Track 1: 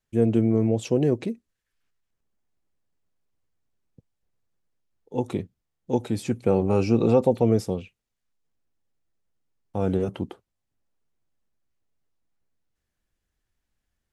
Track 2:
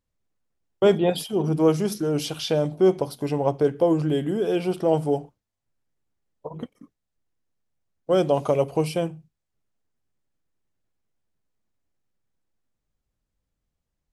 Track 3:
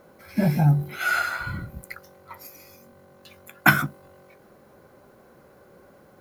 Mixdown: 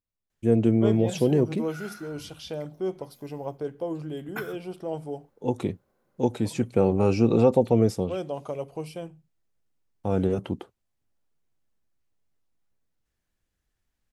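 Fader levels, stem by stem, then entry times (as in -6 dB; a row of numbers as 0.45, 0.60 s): 0.0, -11.5, -19.5 dB; 0.30, 0.00, 0.70 s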